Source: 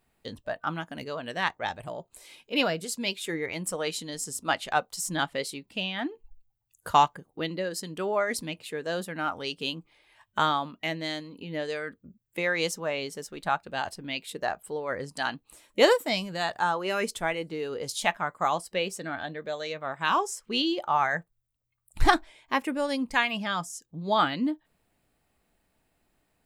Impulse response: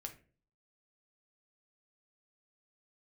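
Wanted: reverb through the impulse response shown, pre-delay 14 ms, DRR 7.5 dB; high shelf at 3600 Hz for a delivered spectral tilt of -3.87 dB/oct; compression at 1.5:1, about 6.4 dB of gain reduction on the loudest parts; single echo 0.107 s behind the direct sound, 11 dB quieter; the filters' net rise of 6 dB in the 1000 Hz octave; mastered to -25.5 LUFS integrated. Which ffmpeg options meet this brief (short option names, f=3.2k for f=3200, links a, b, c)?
-filter_complex "[0:a]equalizer=f=1k:t=o:g=8,highshelf=f=3.6k:g=-5.5,acompressor=threshold=-26dB:ratio=1.5,aecho=1:1:107:0.282,asplit=2[a][b];[1:a]atrim=start_sample=2205,adelay=14[c];[b][c]afir=irnorm=-1:irlink=0,volume=-4dB[d];[a][d]amix=inputs=2:normalize=0,volume=3dB"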